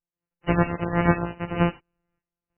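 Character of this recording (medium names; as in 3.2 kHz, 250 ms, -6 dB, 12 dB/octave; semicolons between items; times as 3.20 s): a buzz of ramps at a fixed pitch in blocks of 256 samples; random-step tremolo 3.2 Hz, depth 90%; MP3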